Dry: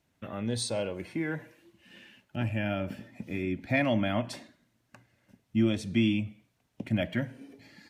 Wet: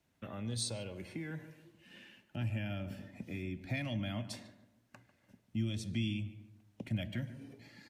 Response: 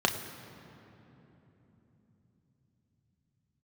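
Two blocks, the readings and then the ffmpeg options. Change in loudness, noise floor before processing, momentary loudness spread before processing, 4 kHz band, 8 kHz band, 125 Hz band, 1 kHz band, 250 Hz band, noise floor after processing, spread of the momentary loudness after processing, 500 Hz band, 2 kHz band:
-8.5 dB, -74 dBFS, 14 LU, -5.5 dB, -3.0 dB, -4.0 dB, -13.5 dB, -10.5 dB, -74 dBFS, 19 LU, -13.5 dB, -10.5 dB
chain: -filter_complex "[0:a]acrossover=split=170|3000[a][b][c];[b]acompressor=threshold=-41dB:ratio=5[d];[a][d][c]amix=inputs=3:normalize=0,asplit=2[e][f];[f]adelay=146,lowpass=f=1.5k:p=1,volume=-13dB,asplit=2[g][h];[h]adelay=146,lowpass=f=1.5k:p=1,volume=0.43,asplit=2[i][j];[j]adelay=146,lowpass=f=1.5k:p=1,volume=0.43,asplit=2[k][l];[l]adelay=146,lowpass=f=1.5k:p=1,volume=0.43[m];[g][i][k][m]amix=inputs=4:normalize=0[n];[e][n]amix=inputs=2:normalize=0,volume=-3dB"

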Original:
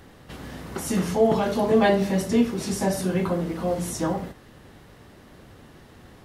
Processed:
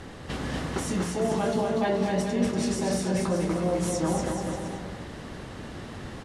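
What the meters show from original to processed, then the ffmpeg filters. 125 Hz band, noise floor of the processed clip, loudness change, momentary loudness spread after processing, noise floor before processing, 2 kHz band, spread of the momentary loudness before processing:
-1.0 dB, -41 dBFS, -4.0 dB, 14 LU, -50 dBFS, -2.5 dB, 16 LU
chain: -af "lowpass=f=9.7k:w=0.5412,lowpass=f=9.7k:w=1.3066,areverse,acompressor=threshold=-33dB:ratio=6,areverse,aecho=1:1:240|432|585.6|708.5|806.8:0.631|0.398|0.251|0.158|0.1,volume=7dB"

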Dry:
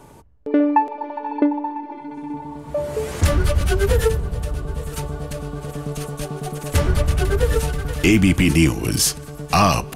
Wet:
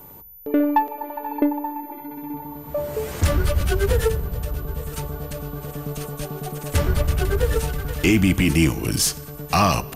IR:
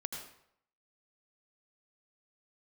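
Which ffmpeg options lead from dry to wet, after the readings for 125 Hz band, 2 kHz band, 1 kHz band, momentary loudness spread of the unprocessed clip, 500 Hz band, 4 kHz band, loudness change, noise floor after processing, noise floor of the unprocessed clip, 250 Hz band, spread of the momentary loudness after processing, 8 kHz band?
-2.5 dB, -2.0 dB, -2.5 dB, 14 LU, -2.5 dB, -2.0 dB, -2.5 dB, -39 dBFS, -38 dBFS, -2.5 dB, 14 LU, -2.0 dB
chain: -filter_complex "[0:a]aeval=exprs='val(0)+0.01*sin(2*PI*14000*n/s)':c=same,aeval=exprs='0.631*(cos(1*acos(clip(val(0)/0.631,-1,1)))-cos(1*PI/2))+0.0141*(cos(6*acos(clip(val(0)/0.631,-1,1)))-cos(6*PI/2))':c=same,asplit=2[a][b];[1:a]atrim=start_sample=2205[c];[b][c]afir=irnorm=-1:irlink=0,volume=-19dB[d];[a][d]amix=inputs=2:normalize=0,volume=-3dB"

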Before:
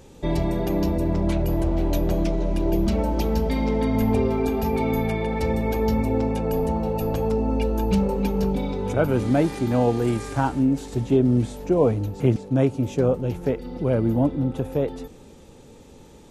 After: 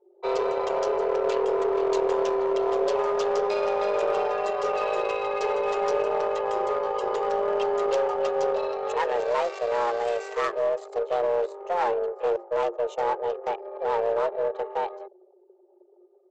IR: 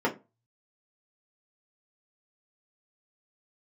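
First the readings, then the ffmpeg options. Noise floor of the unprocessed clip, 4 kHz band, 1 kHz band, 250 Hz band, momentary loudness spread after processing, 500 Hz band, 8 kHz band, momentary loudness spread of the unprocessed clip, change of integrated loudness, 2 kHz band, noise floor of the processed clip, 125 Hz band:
-47 dBFS, -0.5 dB, +4.0 dB, -16.5 dB, 4 LU, +1.0 dB, n/a, 5 LU, -3.0 dB, +1.0 dB, -58 dBFS, under -30 dB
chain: -af "anlmdn=2.51,equalizer=f=370:w=1.8:g=-7.5,aresample=16000,asoftclip=type=hard:threshold=-20.5dB,aresample=44100,afreqshift=350,aeval=exprs='0.224*(cos(1*acos(clip(val(0)/0.224,-1,1)))-cos(1*PI/2))+0.01*(cos(2*acos(clip(val(0)/0.224,-1,1)))-cos(2*PI/2))+0.00708*(cos(7*acos(clip(val(0)/0.224,-1,1)))-cos(7*PI/2))':c=same"

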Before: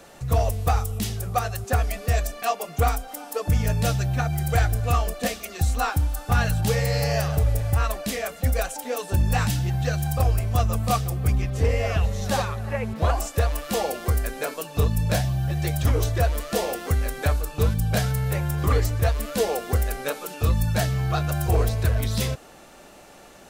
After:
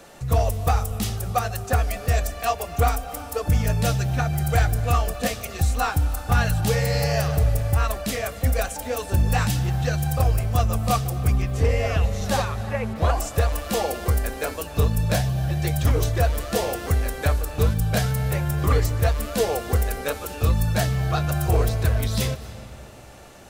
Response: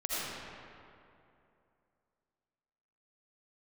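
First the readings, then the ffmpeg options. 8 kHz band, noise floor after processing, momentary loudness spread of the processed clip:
+1.0 dB, -38 dBFS, 6 LU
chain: -filter_complex "[0:a]asplit=2[a][b];[1:a]atrim=start_sample=2205,adelay=149[c];[b][c]afir=irnorm=-1:irlink=0,volume=-21.5dB[d];[a][d]amix=inputs=2:normalize=0,volume=1dB"

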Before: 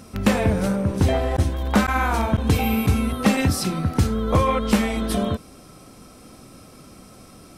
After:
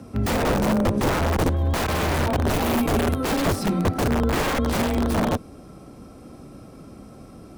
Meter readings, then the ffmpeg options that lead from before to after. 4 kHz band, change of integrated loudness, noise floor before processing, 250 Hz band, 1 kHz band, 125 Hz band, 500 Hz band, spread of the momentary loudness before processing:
0.0 dB, -1.0 dB, -46 dBFS, -1.5 dB, -0.5 dB, -2.0 dB, +0.5 dB, 4 LU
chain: -af "afreqshift=15,aeval=exprs='(mod(6.68*val(0)+1,2)-1)/6.68':c=same,tiltshelf=f=1.4k:g=6.5,volume=-2.5dB"

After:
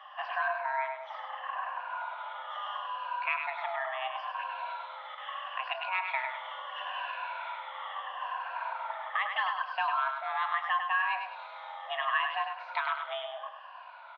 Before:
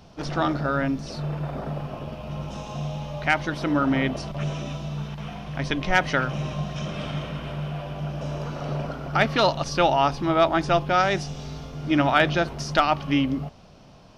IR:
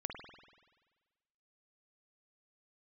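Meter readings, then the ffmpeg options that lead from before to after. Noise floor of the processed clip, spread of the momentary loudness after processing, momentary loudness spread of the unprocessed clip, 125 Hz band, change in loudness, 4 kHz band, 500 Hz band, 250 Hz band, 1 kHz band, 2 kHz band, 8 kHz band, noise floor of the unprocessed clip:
-47 dBFS, 11 LU, 13 LU, under -40 dB, -9.0 dB, -9.0 dB, -16.0 dB, under -40 dB, -5.5 dB, -5.0 dB, under -35 dB, -49 dBFS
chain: -filter_complex "[0:a]afftfilt=real='re*pow(10,14/40*sin(2*PI*(1.1*log(max(b,1)*sr/1024/100)/log(2)-(-0.75)*(pts-256)/sr)))':imag='im*pow(10,14/40*sin(2*PI*(1.1*log(max(b,1)*sr/1024/100)/log(2)-(-0.75)*(pts-256)/sr)))':win_size=1024:overlap=0.75,acompressor=threshold=-35dB:ratio=3,asplit=2[a][b];[b]adelay=32,volume=-14dB[c];[a][c]amix=inputs=2:normalize=0,aecho=1:1:101|202|303|404:0.501|0.175|0.0614|0.0215,highpass=f=340:t=q:w=0.5412,highpass=f=340:t=q:w=1.307,lowpass=f=2.8k:t=q:w=0.5176,lowpass=f=2.8k:t=q:w=0.7071,lowpass=f=2.8k:t=q:w=1.932,afreqshift=380,volume=2.5dB"

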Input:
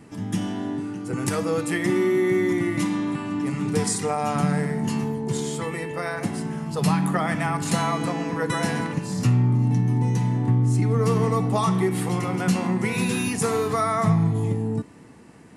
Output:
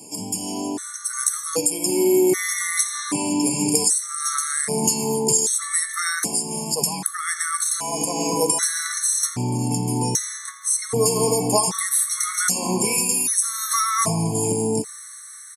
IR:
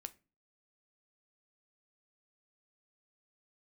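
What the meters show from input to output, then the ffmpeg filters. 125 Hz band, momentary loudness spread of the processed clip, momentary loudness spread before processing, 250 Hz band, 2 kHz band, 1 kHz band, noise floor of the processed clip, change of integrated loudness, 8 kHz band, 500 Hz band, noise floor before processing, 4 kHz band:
-8.0 dB, 8 LU, 8 LU, -2.5 dB, +1.0 dB, 0.0 dB, -39 dBFS, +3.0 dB, +16.5 dB, +1.5 dB, -46 dBFS, +8.0 dB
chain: -filter_complex "[0:a]equalizer=f=8.4k:w=0.75:g=5.5,acrossover=split=190[a][b];[b]aexciter=amount=13.4:drive=2.8:freq=4.5k[c];[a][c]amix=inputs=2:normalize=0,acompressor=threshold=-19dB:ratio=6,bass=f=250:g=-10,treble=f=4k:g=-6,asplit=2[d][e];[e]aecho=0:1:84|168|252|336|420:0.126|0.0705|0.0395|0.0221|0.0124[f];[d][f]amix=inputs=2:normalize=0,dynaudnorm=f=330:g=7:m=5dB,highpass=120,afftfilt=real='re*gt(sin(2*PI*0.64*pts/sr)*(1-2*mod(floor(b*sr/1024/1100),2)),0)':imag='im*gt(sin(2*PI*0.64*pts/sr)*(1-2*mod(floor(b*sr/1024/1100),2)),0)':win_size=1024:overlap=0.75,volume=5dB"

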